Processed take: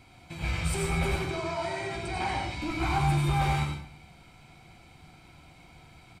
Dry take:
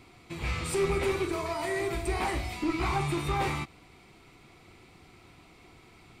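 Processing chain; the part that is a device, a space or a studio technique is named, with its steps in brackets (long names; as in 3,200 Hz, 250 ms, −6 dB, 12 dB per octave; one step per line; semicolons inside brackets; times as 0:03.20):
0:01.16–0:02.62: Chebyshev band-pass filter 110–5,900 Hz, order 2
microphone above a desk (comb filter 1.3 ms, depth 52%; convolution reverb RT60 0.60 s, pre-delay 80 ms, DRR 2 dB)
level −2 dB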